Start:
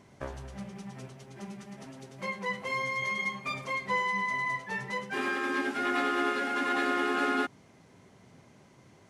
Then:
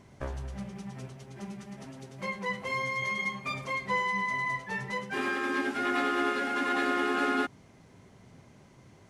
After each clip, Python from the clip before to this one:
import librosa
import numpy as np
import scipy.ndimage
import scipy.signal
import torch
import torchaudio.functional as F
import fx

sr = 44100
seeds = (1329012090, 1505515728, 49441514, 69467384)

y = fx.low_shelf(x, sr, hz=82.0, db=11.5)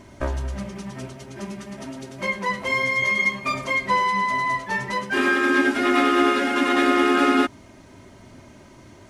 y = x + 0.54 * np.pad(x, (int(3.2 * sr / 1000.0), 0))[:len(x)]
y = y * 10.0 ** (9.0 / 20.0)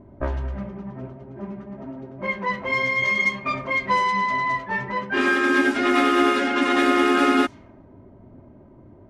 y = fx.env_lowpass(x, sr, base_hz=600.0, full_db=-15.0)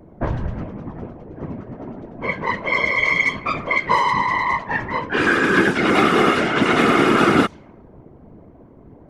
y = fx.whisperise(x, sr, seeds[0])
y = y * 10.0 ** (3.0 / 20.0)